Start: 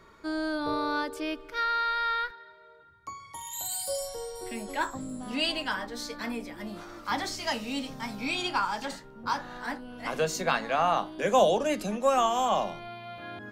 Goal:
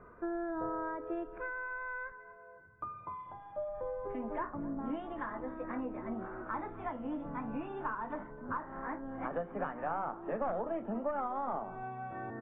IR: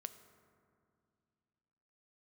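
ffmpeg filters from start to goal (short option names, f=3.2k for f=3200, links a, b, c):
-filter_complex "[0:a]aeval=exprs='0.299*(cos(1*acos(clip(val(0)/0.299,-1,1)))-cos(1*PI/2))+0.106*(cos(2*acos(clip(val(0)/0.299,-1,1)))-cos(2*PI/2))+0.0841*(cos(3*acos(clip(val(0)/0.299,-1,1)))-cos(3*PI/2))+0.119*(cos(5*acos(clip(val(0)/0.299,-1,1)))-cos(5*PI/2))+0.0473*(cos(7*acos(clip(val(0)/0.299,-1,1)))-cos(7*PI/2))':c=same,acompressor=threshold=-35dB:ratio=4,lowpass=f=1.3k:w=0.5412,lowpass=f=1.3k:w=1.3066,asplit=2[a][b];[b]aecho=0:1:276:0.1[c];[a][c]amix=inputs=2:normalize=0,asetrate=48000,aresample=44100,volume=1dB" -ar 16000 -c:a aac -b:a 16k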